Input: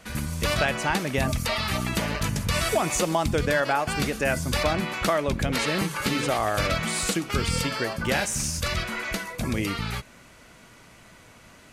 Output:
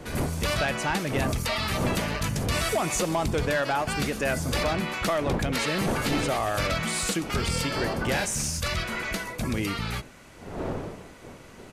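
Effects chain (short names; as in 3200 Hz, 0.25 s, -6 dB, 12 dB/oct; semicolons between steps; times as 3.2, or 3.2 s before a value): wind noise 500 Hz -35 dBFS; soft clip -18.5 dBFS, distortion -16 dB; downsampling 32000 Hz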